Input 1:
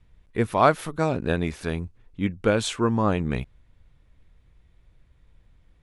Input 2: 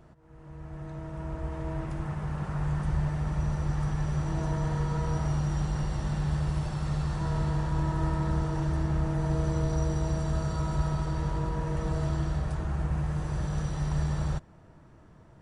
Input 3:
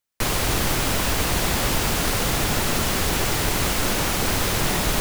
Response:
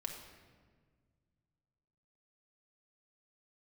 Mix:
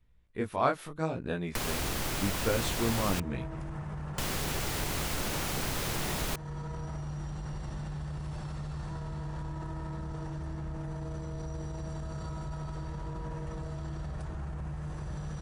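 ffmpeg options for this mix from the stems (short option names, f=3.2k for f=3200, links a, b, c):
-filter_complex "[0:a]flanger=delay=16.5:depth=6.1:speed=0.75,volume=-6.5dB[a];[1:a]alimiter=level_in=3.5dB:limit=-24dB:level=0:latency=1:release=31,volume=-3.5dB,adelay=1700,volume=-2dB[b];[2:a]adelay=1350,volume=-4dB,asplit=3[c][d][e];[c]atrim=end=3.2,asetpts=PTS-STARTPTS,afade=t=out:st=3.196:d=0.004:c=hsin[f];[d]atrim=start=3.2:end=4.18,asetpts=PTS-STARTPTS,volume=0[g];[e]atrim=start=4.18,asetpts=PTS-STARTPTS,afade=t=in:d=0.004:c=hsin[h];[f][g][h]concat=n=3:v=0:a=1[i];[b][i]amix=inputs=2:normalize=0,acompressor=threshold=-35dB:ratio=2,volume=0dB[j];[a][j]amix=inputs=2:normalize=0"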